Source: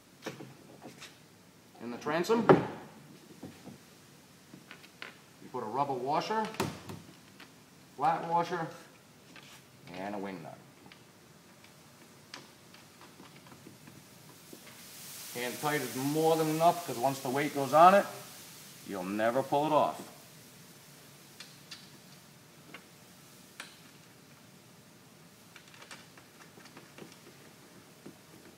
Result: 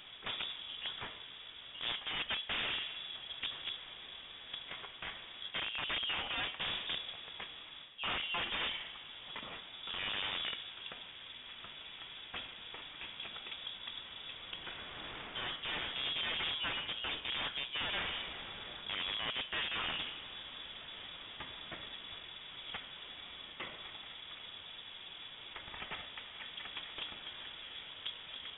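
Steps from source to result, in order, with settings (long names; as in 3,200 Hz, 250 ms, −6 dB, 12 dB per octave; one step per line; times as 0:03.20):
reversed playback
downward compressor 12 to 1, threshold −39 dBFS, peak gain reduction 25 dB
reversed playback
wrap-around overflow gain 38 dB
spring reverb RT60 3.2 s, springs 38 ms, chirp 50 ms, DRR 15.5 dB
voice inversion scrambler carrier 3,600 Hz
level +7.5 dB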